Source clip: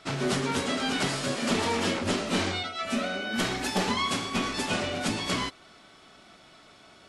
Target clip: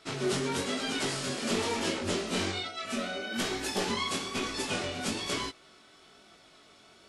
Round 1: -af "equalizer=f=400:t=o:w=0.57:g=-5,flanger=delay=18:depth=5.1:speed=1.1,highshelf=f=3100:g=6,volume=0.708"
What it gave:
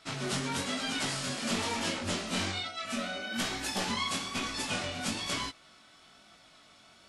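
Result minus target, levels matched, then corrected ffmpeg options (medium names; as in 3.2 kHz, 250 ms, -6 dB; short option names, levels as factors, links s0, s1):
500 Hz band -5.0 dB
-af "equalizer=f=400:t=o:w=0.57:g=5.5,flanger=delay=18:depth=5.1:speed=1.1,highshelf=f=3100:g=6,volume=0.708"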